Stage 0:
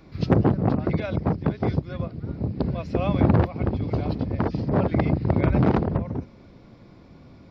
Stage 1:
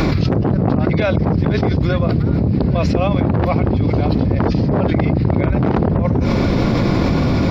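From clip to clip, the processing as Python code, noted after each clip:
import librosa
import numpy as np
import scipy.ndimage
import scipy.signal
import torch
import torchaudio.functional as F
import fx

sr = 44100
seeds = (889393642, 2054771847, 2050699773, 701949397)

y = fx.env_flatten(x, sr, amount_pct=100)
y = y * librosa.db_to_amplitude(-1.0)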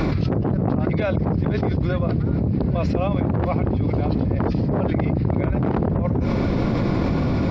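y = fx.high_shelf(x, sr, hz=3300.0, db=-8.0)
y = y * librosa.db_to_amplitude(-5.0)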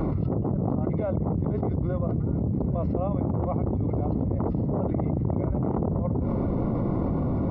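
y = scipy.signal.savgol_filter(x, 65, 4, mode='constant')
y = y * librosa.db_to_amplitude(-5.0)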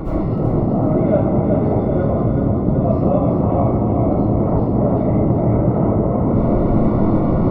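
y = fx.echo_feedback(x, sr, ms=378, feedback_pct=59, wet_db=-5.0)
y = fx.rev_freeverb(y, sr, rt60_s=0.76, hf_ratio=0.95, predelay_ms=40, drr_db=-10.0)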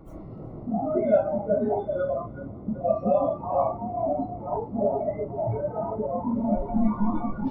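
y = fx.recorder_agc(x, sr, target_db=-8.5, rise_db_per_s=6.0, max_gain_db=30)
y = fx.noise_reduce_blind(y, sr, reduce_db=21)
y = y * librosa.db_to_amplitude(-1.5)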